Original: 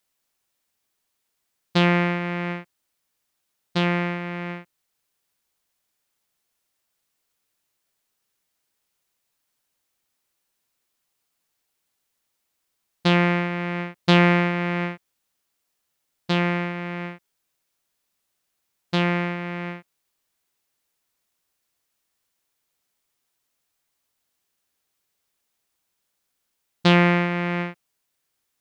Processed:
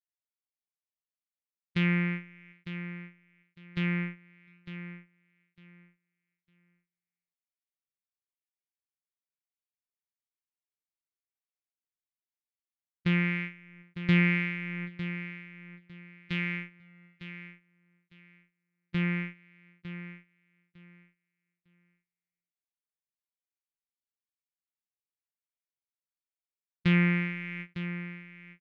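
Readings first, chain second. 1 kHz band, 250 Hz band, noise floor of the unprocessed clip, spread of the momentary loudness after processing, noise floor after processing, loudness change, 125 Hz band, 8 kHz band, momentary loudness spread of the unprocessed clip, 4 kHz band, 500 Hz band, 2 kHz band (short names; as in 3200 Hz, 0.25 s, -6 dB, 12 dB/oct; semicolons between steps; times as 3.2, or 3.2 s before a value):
-19.0 dB, -7.0 dB, -77 dBFS, 22 LU, under -85 dBFS, -8.0 dB, -6.0 dB, n/a, 16 LU, -13.5 dB, -17.5 dB, -6.5 dB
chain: gate -24 dBFS, range -19 dB; EQ curve 170 Hz 0 dB, 450 Hz -11 dB, 690 Hz -23 dB, 2200 Hz +4 dB, 4100 Hz -11 dB; harmonic tremolo 1 Hz, depth 50%, crossover 1700 Hz; on a send: feedback echo 0.904 s, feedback 20%, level -12 dB; on the sum: gain -4.5 dB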